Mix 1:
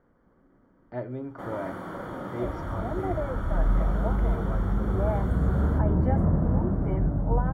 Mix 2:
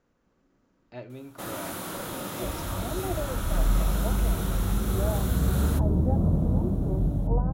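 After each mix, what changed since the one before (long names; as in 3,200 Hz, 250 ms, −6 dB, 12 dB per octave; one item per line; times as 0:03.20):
speech −7.0 dB
second sound: add Gaussian smoothing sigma 8.8 samples
master: remove Savitzky-Golay smoothing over 41 samples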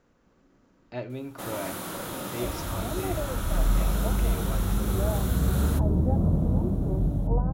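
speech +6.0 dB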